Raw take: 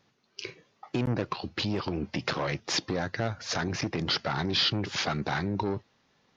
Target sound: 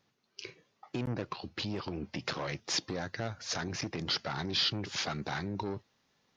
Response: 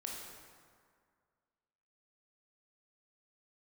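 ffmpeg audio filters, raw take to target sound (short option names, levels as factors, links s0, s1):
-af "asetnsamples=n=441:p=0,asendcmd='2.26 highshelf g 9',highshelf=f=5700:g=3.5,volume=0.473"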